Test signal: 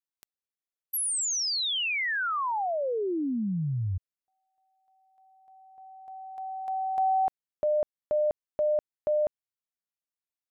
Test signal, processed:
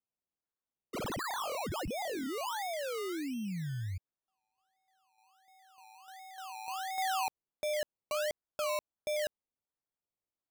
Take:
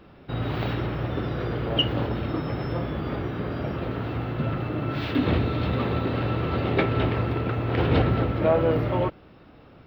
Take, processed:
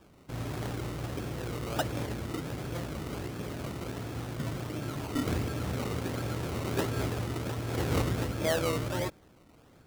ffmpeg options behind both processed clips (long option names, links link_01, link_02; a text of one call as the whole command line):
ffmpeg -i in.wav -af "acrusher=samples=21:mix=1:aa=0.000001:lfo=1:lforange=12.6:lforate=1.4,volume=-8dB" out.wav